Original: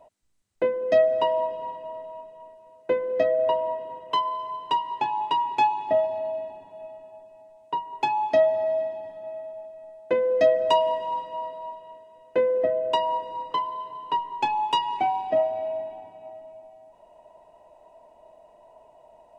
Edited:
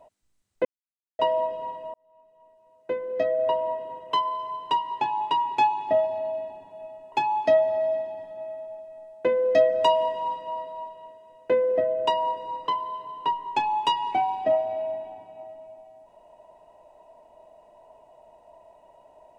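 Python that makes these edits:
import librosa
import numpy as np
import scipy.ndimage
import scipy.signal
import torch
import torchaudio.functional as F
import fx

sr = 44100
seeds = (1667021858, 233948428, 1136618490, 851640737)

y = fx.edit(x, sr, fx.silence(start_s=0.65, length_s=0.54),
    fx.fade_in_span(start_s=1.94, length_s=1.76),
    fx.cut(start_s=7.12, length_s=0.86), tone=tone)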